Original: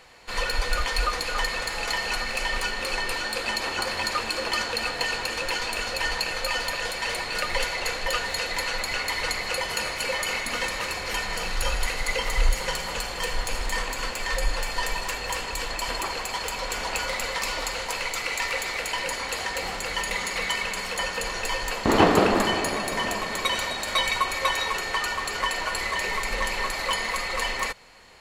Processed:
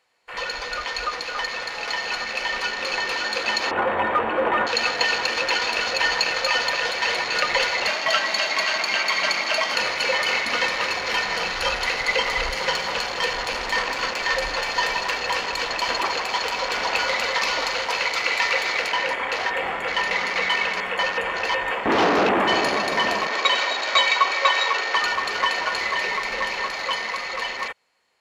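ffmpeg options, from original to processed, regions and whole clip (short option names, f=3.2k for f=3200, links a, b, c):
-filter_complex "[0:a]asettb=1/sr,asplit=3[a][b][c];[a]atrim=end=3.714[d];[b]atrim=start=3.71:end=4.67,asetpts=PTS-STARTPTS,afade=t=in:d=0.004:c=qsin,afade=t=out:st=0.956:d=0.004:c=qsin,lowpass=1.2k,asoftclip=type=hard:threshold=-27.5dB,acontrast=77[e];[c]atrim=start=4.666[f];[d][e]acrossfade=d=0.004:c1=hsin:c2=qsin[g];[g][f]acrossfade=d=0.004:c1=qsin:c2=hsin,asettb=1/sr,asplit=3[h][i][j];[h]atrim=end=7.874[k];[i]atrim=start=7.87:end=9.75,asetpts=PTS-STARTPTS,afade=t=in:d=0.004:c=qsin,afade=t=out:st=1.876:d=0.004:c=qsin,highpass=80,afreqshift=120[l];[j]atrim=start=9.746[m];[k][l]acrossfade=d=0.004:c1=hsin:c2=qsin[n];[n][m]acrossfade=d=0.004:c1=qsin:c2=hsin,asettb=1/sr,asplit=3[o][p][q];[o]atrim=end=18.894[r];[p]atrim=start=18.89:end=22.51,asetpts=PTS-STARTPTS,afade=t=in:d=0.004:c=qsin,afade=t=out:st=3.616:d=0.004:c=qsin,bass=f=250:g=-1,treble=f=4k:g=-7,asplit=2[s][t];[t]adelay=21,volume=-12dB[u];[s][u]amix=inputs=2:normalize=0,atrim=end_sample=159642,volume=21dB,asoftclip=hard,volume=-21dB[v];[q]atrim=start=22.506[w];[r][v]acrossfade=d=0.004:c1=hsin:c2=qsin[x];[x][w]acrossfade=d=0.004:c1=qsin:c2=hsin,asettb=1/sr,asplit=3[y][z][aa];[y]atrim=end=23.274[ab];[z]atrim=start=23.27:end=24.95,asetpts=PTS-STARTPTS,afade=t=in:d=0.004:c=qsin,afade=t=out:st=1.676:d=0.004:c=qsin,acrossover=split=250 7200:gain=0.141 1 0.1[ac][ad][ae];[ac][ad][ae]amix=inputs=3:normalize=0,afreqshift=15[af];[aa]atrim=start=24.946[ag];[ab][af]acrossfade=d=0.004:c1=hsin:c2=qsin[ah];[ah][ag]acrossfade=d=0.004:c1=qsin:c2=hsin,afwtdn=0.0158,highpass=f=330:p=1,dynaudnorm=f=660:g=9:m=7dB"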